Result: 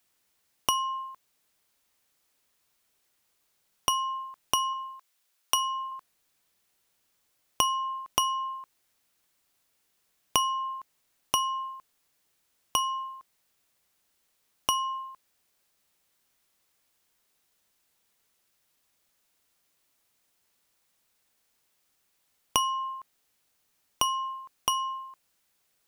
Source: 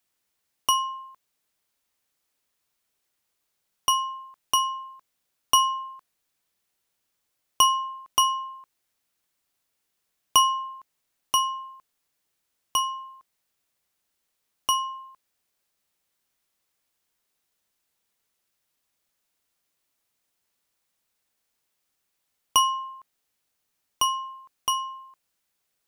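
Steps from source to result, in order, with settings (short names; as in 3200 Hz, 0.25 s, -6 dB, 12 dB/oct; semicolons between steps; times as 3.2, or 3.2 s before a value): 4.73–5.92 HPF 950 Hz 6 dB/oct; compressor 4:1, threshold -29 dBFS, peak gain reduction 13 dB; gain +4.5 dB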